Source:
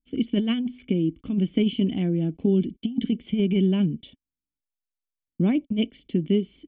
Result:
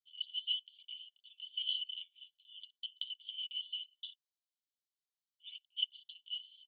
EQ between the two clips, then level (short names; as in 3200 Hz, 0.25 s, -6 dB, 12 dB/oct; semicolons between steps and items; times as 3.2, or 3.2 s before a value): rippled Chebyshev high-pass 2900 Hz, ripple 3 dB; air absorption 190 m; differentiator; +14.0 dB